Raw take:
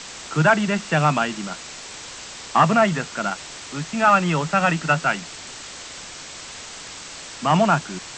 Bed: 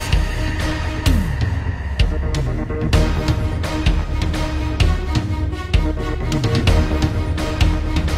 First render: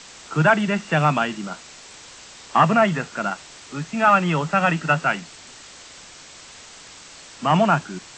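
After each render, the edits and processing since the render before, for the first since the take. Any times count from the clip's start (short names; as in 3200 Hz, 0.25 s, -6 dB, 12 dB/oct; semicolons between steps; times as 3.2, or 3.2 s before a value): noise print and reduce 6 dB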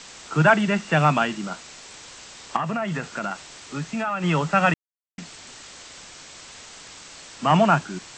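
2.56–4.24 compressor, threshold -23 dBFS; 4.74–5.18 mute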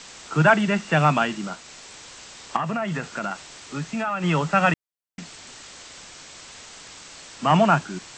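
1.47–2.17 transient shaper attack -6 dB, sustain -2 dB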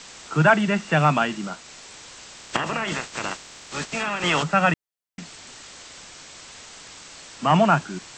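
2.37–4.42 spectral limiter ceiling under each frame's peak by 20 dB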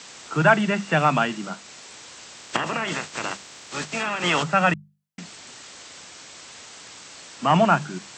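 HPF 87 Hz; notches 50/100/150/200 Hz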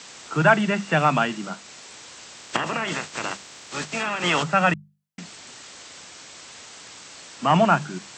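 nothing audible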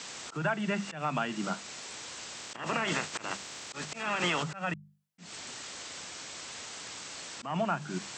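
compressor 10:1, threshold -26 dBFS, peak gain reduction 15.5 dB; auto swell 0.173 s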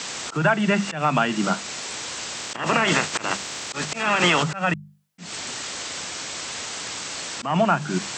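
gain +11 dB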